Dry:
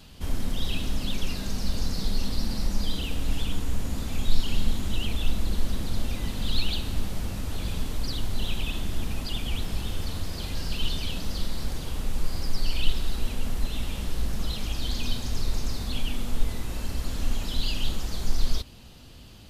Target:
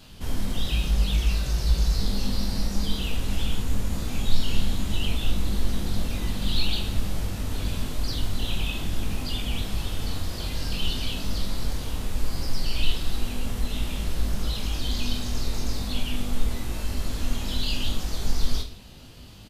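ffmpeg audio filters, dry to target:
-filter_complex "[0:a]asettb=1/sr,asplit=3[s0][s1][s2];[s0]atrim=end=0.694[s3];[s1]atrim=start=0.69:end=1.99,asetpts=PTS-STARTPTS,afade=t=in:d=0.004:c=qsin,afade=t=out:st=1.296:d=0.004:c=qsin,afreqshift=-67[s4];[s2]atrim=start=1.986[s5];[s3][s4]acrossfade=d=0.004:c1=hsin:c2=qsin[s6];[s6][s5]acrossfade=d=0.004:c1=qsin:c2=hsin,aecho=1:1:20|45|76.25|115.3|164.1:0.631|0.398|0.251|0.158|0.1"

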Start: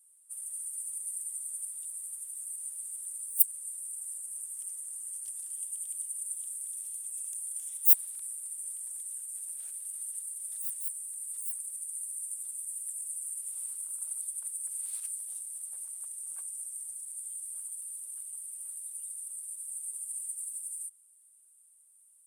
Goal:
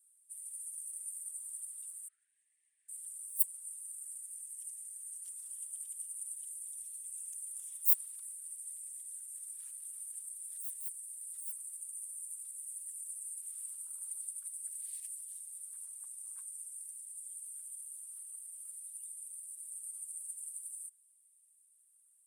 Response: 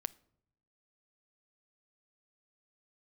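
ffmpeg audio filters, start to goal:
-filter_complex "[0:a]asettb=1/sr,asplit=3[s0][s1][s2];[s0]atrim=end=2.084[s3];[s1]atrim=start=2.08:end=2.89,asetpts=PTS-STARTPTS,afade=t=in:d=0.004:c=qsin,afade=t=out:st=0.806:d=0.004:c=qsin,asuperpass=centerf=1100:order=4:qfactor=0.66[s4];[s2]atrim=start=2.886[s5];[s3][s4]acrossfade=d=0.004:c1=hsin:c2=qsin[s6];[s6][s5]acrossfade=d=0.004:c1=qsin:c2=hsin,afftfilt=real='hypot(re,im)*cos(2*PI*random(0))':imag='hypot(re,im)*sin(2*PI*random(1))':win_size=512:overlap=0.75,afftfilt=real='re*gte(b*sr/1024,790*pow(1700/790,0.5+0.5*sin(2*PI*0.48*pts/sr)))':imag='im*gte(b*sr/1024,790*pow(1700/790,0.5+0.5*sin(2*PI*0.48*pts/sr)))':win_size=1024:overlap=0.75"

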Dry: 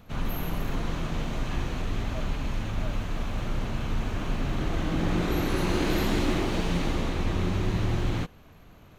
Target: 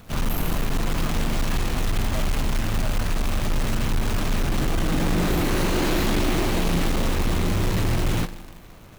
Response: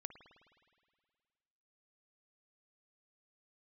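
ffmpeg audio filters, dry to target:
-filter_complex "[0:a]volume=15,asoftclip=hard,volume=0.0668,asplit=2[s0][s1];[1:a]atrim=start_sample=2205,asetrate=57330,aresample=44100[s2];[s1][s2]afir=irnorm=-1:irlink=0,volume=1.88[s3];[s0][s3]amix=inputs=2:normalize=0,acrusher=bits=2:mode=log:mix=0:aa=0.000001"

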